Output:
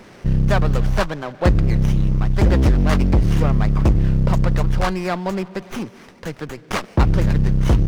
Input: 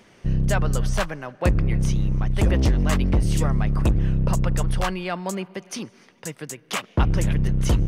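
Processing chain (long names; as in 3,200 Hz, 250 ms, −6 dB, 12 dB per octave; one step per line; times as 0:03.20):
mu-law and A-law mismatch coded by mu
high shelf with overshoot 7,200 Hz −10 dB, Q 1.5
windowed peak hold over 9 samples
level +4 dB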